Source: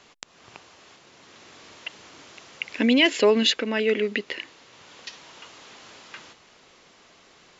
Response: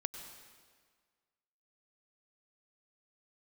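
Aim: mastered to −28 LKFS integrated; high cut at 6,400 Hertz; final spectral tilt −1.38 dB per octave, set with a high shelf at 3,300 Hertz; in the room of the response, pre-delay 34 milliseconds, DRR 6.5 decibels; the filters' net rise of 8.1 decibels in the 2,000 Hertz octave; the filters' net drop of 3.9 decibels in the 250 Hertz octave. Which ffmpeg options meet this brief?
-filter_complex "[0:a]lowpass=6400,equalizer=frequency=250:width_type=o:gain=-4.5,equalizer=frequency=2000:width_type=o:gain=7,highshelf=frequency=3300:gain=7.5,asplit=2[link_01][link_02];[1:a]atrim=start_sample=2205,adelay=34[link_03];[link_02][link_03]afir=irnorm=-1:irlink=0,volume=-6.5dB[link_04];[link_01][link_04]amix=inputs=2:normalize=0,volume=-9.5dB"

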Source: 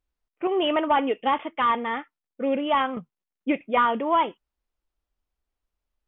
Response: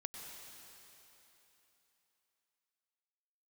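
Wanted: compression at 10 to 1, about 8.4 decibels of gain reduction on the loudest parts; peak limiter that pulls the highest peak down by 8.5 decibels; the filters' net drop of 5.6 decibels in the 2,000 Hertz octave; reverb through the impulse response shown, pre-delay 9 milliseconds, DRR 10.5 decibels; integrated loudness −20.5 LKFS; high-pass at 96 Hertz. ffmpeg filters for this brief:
-filter_complex "[0:a]highpass=96,equalizer=frequency=2000:width_type=o:gain=-7.5,acompressor=threshold=-26dB:ratio=10,alimiter=level_in=2dB:limit=-24dB:level=0:latency=1,volume=-2dB,asplit=2[link_01][link_02];[1:a]atrim=start_sample=2205,adelay=9[link_03];[link_02][link_03]afir=irnorm=-1:irlink=0,volume=-8.5dB[link_04];[link_01][link_04]amix=inputs=2:normalize=0,volume=14.5dB"

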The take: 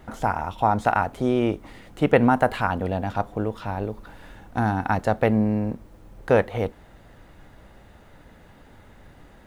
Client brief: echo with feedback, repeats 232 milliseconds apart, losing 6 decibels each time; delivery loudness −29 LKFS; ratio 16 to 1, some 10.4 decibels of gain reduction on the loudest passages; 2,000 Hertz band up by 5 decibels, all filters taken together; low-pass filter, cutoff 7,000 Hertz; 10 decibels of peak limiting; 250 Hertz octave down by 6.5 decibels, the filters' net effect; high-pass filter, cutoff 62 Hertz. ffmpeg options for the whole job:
ffmpeg -i in.wav -af "highpass=62,lowpass=7000,equalizer=frequency=250:width_type=o:gain=-8,equalizer=frequency=2000:width_type=o:gain=7,acompressor=threshold=-22dB:ratio=16,alimiter=limit=-20.5dB:level=0:latency=1,aecho=1:1:232|464|696|928|1160|1392:0.501|0.251|0.125|0.0626|0.0313|0.0157,volume=3.5dB" out.wav

